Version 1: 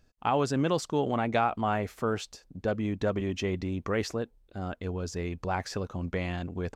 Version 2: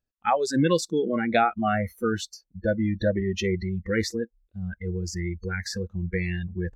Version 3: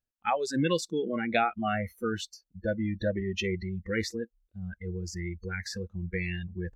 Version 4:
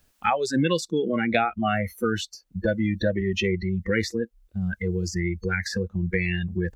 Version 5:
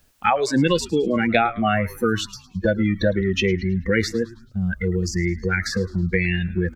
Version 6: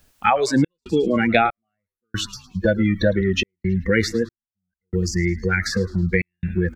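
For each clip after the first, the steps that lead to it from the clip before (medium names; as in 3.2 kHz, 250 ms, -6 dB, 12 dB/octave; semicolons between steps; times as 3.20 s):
spectral noise reduction 28 dB; trim +6.5 dB
dynamic bell 2.7 kHz, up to +7 dB, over -48 dBFS, Q 2.1; trim -5.5 dB
three bands compressed up and down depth 70%; trim +5.5 dB
frequency-shifting echo 107 ms, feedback 46%, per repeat -120 Hz, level -19 dB; trim +4 dB
trance gate "xxx.xxx...xxx" 70 bpm -60 dB; trim +1.5 dB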